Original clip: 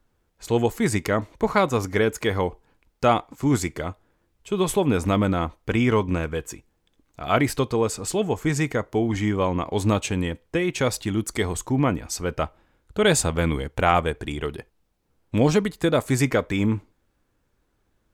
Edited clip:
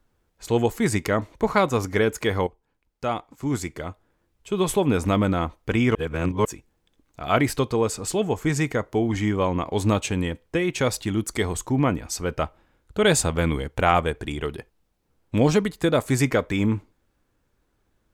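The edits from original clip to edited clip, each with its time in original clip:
2.47–4.67 fade in, from -14 dB
5.95–6.45 reverse

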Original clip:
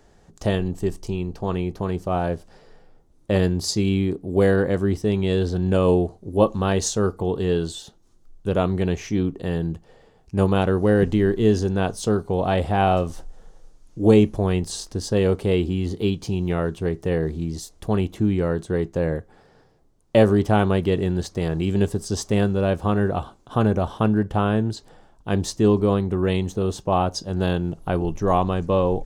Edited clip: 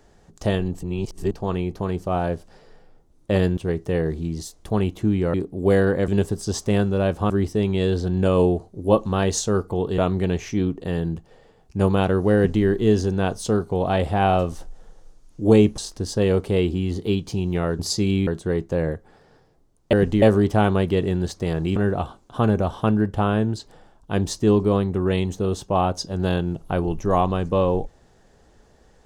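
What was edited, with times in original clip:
0.83–1.31 reverse
3.57–4.05 swap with 16.74–18.51
7.47–8.56 cut
10.93–11.22 copy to 20.17
14.36–14.73 cut
21.71–22.93 move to 4.79

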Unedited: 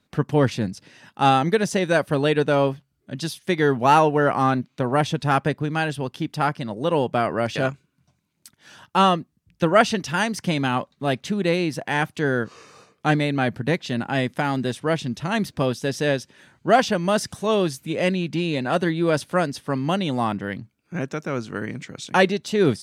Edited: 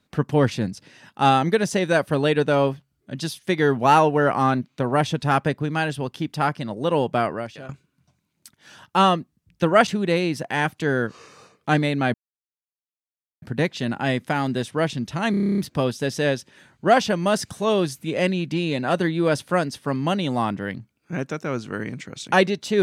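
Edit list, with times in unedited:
7.24–7.69 fade out quadratic, to -17.5 dB
9.87–11.24 cut
13.51 insert silence 1.28 s
15.4 stutter 0.03 s, 10 plays

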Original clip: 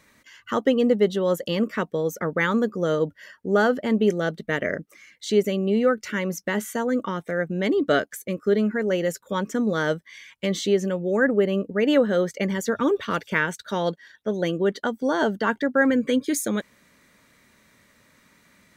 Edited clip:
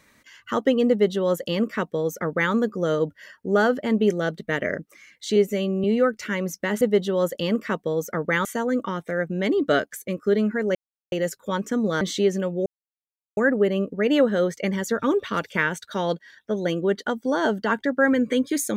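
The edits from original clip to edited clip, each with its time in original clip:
0.89–2.53 copy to 6.65
5.36–5.68 stretch 1.5×
8.95 insert silence 0.37 s
9.84–10.49 cut
11.14 insert silence 0.71 s

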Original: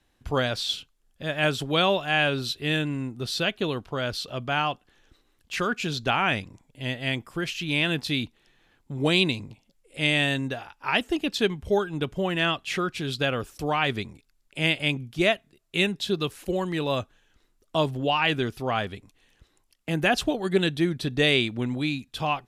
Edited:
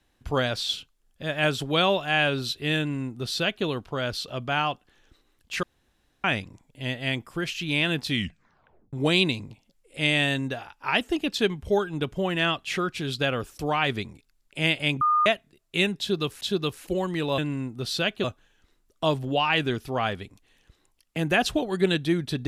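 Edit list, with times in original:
2.79–3.65 copy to 16.96
5.63–6.24 room tone
8.07 tape stop 0.86 s
15.01–15.26 bleep 1220 Hz -18 dBFS
15.99–16.41 loop, 2 plays

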